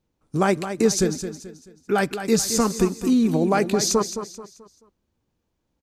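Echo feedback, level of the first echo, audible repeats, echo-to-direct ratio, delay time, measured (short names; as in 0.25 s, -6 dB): 36%, -10.0 dB, 3, -9.5 dB, 0.217 s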